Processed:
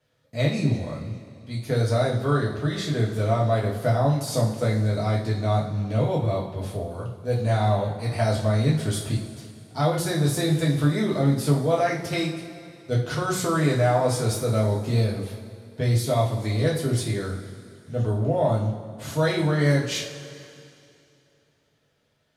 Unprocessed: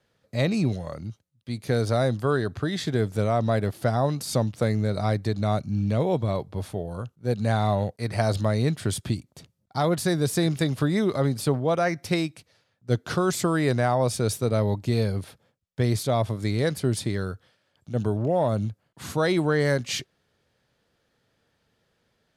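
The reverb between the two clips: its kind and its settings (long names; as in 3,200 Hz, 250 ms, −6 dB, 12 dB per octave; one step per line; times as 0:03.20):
coupled-rooms reverb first 0.39 s, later 2.7 s, from −17 dB, DRR −5 dB
level −5.5 dB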